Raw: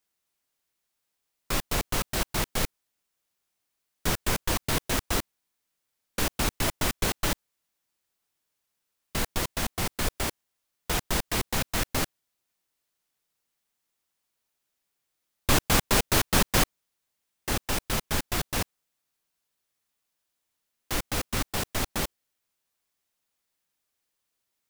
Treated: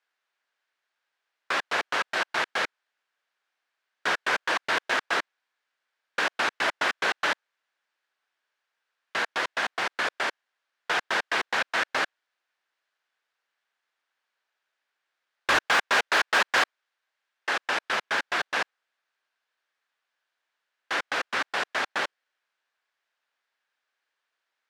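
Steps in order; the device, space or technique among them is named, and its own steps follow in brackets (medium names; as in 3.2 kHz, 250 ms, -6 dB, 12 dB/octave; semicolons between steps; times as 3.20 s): megaphone (band-pass 590–3300 Hz; peaking EQ 1.6 kHz +7.5 dB 0.41 oct; hard clipper -21 dBFS, distortion -17 dB); 15.68–17.59 s: bass shelf 160 Hz -11.5 dB; trim +5 dB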